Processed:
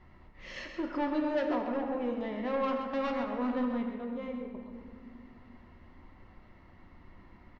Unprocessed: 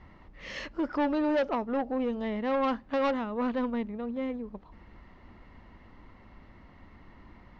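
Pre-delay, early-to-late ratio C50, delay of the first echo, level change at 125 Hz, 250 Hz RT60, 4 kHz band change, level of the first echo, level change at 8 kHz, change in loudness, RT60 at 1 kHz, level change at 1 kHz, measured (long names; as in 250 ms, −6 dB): 3 ms, 3.5 dB, 131 ms, can't be measured, 3.2 s, −3.5 dB, −8.5 dB, can't be measured, −3.0 dB, 1.8 s, −3.0 dB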